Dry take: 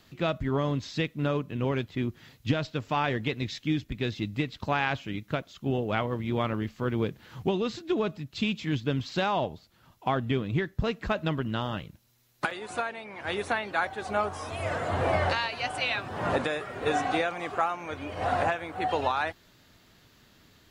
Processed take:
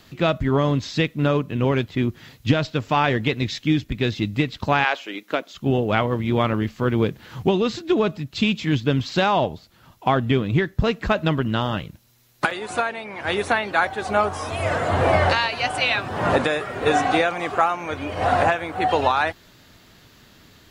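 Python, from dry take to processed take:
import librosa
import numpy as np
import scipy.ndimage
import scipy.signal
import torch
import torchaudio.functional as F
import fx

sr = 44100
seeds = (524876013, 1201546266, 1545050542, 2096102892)

y = fx.highpass(x, sr, hz=fx.line((4.83, 450.0), (5.53, 220.0)), slope=24, at=(4.83, 5.53), fade=0.02)
y = y * librosa.db_to_amplitude(8.0)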